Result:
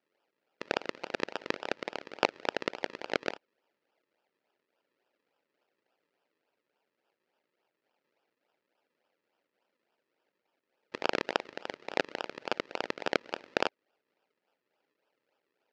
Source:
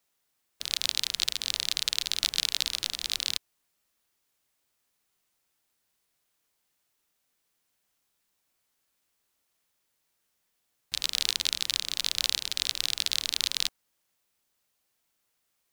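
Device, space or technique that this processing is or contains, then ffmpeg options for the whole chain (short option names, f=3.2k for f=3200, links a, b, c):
circuit-bent sampling toy: -af "acrusher=samples=41:mix=1:aa=0.000001:lfo=1:lforange=41:lforate=3.5,highpass=570,equalizer=f=700:t=q:w=4:g=-4,equalizer=f=1.1k:t=q:w=4:g=-10,equalizer=f=3.5k:t=q:w=4:g=-5,lowpass=f=4.6k:w=0.5412,lowpass=f=4.6k:w=1.3066,volume=4dB"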